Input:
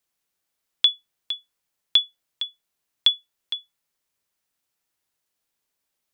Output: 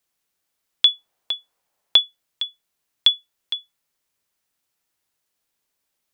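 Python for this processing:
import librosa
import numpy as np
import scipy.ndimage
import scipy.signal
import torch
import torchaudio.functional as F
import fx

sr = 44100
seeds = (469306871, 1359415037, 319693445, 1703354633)

y = fx.peak_eq(x, sr, hz=710.0, db=10.5, octaves=1.7, at=(0.85, 2.01))
y = y * librosa.db_to_amplitude(2.5)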